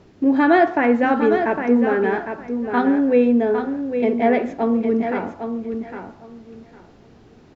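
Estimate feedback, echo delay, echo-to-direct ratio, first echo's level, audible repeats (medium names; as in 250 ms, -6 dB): 19%, 807 ms, -7.5 dB, -7.5 dB, 2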